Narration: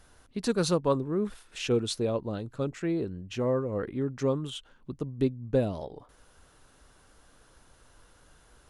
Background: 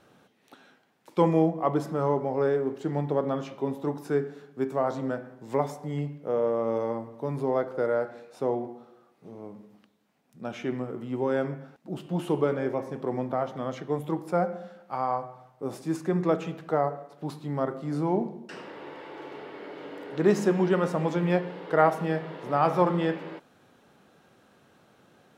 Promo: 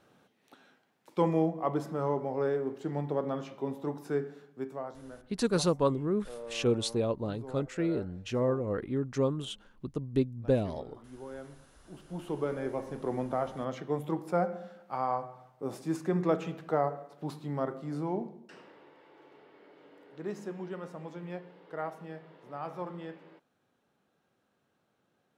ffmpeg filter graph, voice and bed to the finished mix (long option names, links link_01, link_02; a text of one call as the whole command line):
ffmpeg -i stem1.wav -i stem2.wav -filter_complex "[0:a]adelay=4950,volume=-1dB[link_01];[1:a]volume=9dB,afade=type=out:start_time=4.33:duration=0.64:silence=0.251189,afade=type=in:start_time=11.79:duration=1.31:silence=0.199526,afade=type=out:start_time=17.37:duration=1.54:silence=0.223872[link_02];[link_01][link_02]amix=inputs=2:normalize=0" out.wav